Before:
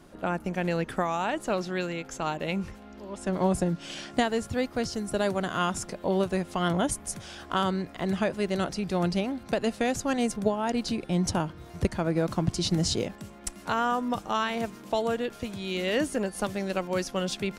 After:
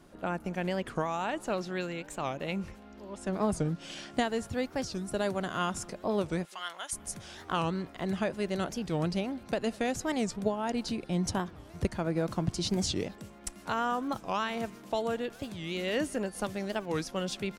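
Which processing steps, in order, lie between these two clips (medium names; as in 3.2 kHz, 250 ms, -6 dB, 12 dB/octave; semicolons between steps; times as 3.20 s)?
6.45–6.93 s: high-pass 1.4 kHz 12 dB/octave; speakerphone echo 200 ms, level -24 dB; warped record 45 rpm, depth 250 cents; trim -4 dB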